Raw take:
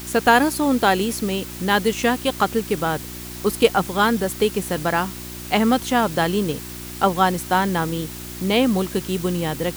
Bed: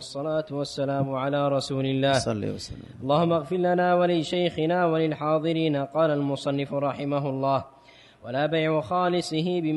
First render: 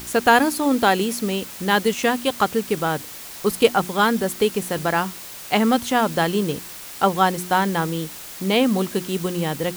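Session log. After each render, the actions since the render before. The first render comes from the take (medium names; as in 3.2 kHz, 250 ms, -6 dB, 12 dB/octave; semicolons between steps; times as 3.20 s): de-hum 60 Hz, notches 6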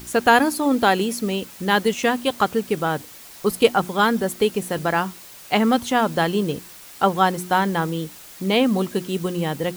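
noise reduction 6 dB, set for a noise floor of -37 dBFS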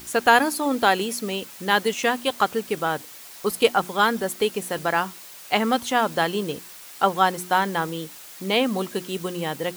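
bass shelf 290 Hz -10 dB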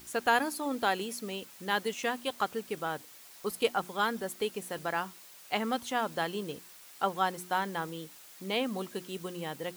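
trim -10 dB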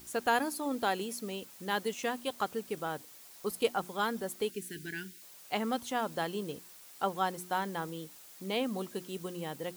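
4.50–5.22 s: time-frequency box 450–1400 Hz -29 dB; peaking EQ 2 kHz -4 dB 2.5 oct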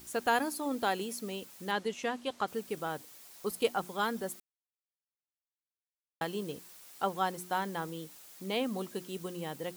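1.71–2.48 s: distance through air 56 m; 4.40–6.21 s: mute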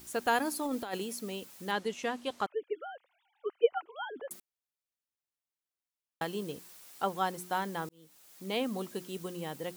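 0.45–0.98 s: compressor with a negative ratio -33 dBFS, ratio -0.5; 2.46–4.31 s: formants replaced by sine waves; 7.89–8.55 s: fade in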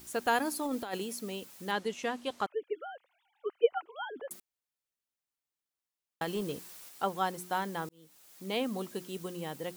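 6.27–6.89 s: waveshaping leveller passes 1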